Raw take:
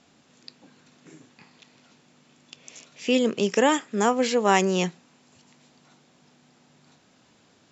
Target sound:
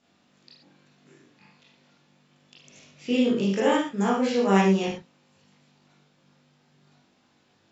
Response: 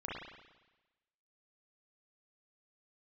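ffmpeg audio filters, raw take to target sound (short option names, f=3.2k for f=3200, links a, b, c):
-filter_complex "[0:a]asettb=1/sr,asplit=3[a][b][c];[a]atrim=end=2.634[d];[b]atrim=start=2.63:end=4.88,asetpts=PTS-STARTPTS,afade=t=in:d=0.004:c=qsin,afade=t=out:st=2.246:d=0.004:c=qsin,lowshelf=f=230:g=11[e];[c]atrim=start=4.876[f];[d][e]acrossfade=d=0.004:c1=hsin:c2=qsin[g];[g][f]acrossfade=d=0.004:c1=qsin:c2=hsin[h];[1:a]atrim=start_sample=2205,afade=t=out:st=0.28:d=0.01,atrim=end_sample=12789,asetrate=70560,aresample=44100[i];[h][i]afir=irnorm=-1:irlink=0,volume=-1.5dB"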